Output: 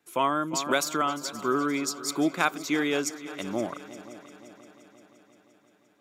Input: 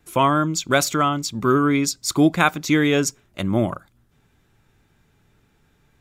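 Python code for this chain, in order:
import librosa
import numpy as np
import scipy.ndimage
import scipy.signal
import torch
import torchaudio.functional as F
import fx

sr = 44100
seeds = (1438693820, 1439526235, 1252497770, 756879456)

p1 = scipy.signal.sosfilt(scipy.signal.butter(2, 270.0, 'highpass', fs=sr, output='sos'), x)
p2 = p1 + fx.echo_heads(p1, sr, ms=174, heads='second and third', feedback_pct=57, wet_db=-17, dry=0)
p3 = fx.band_squash(p2, sr, depth_pct=70, at=(0.53, 1.02))
y = p3 * 10.0 ** (-7.0 / 20.0)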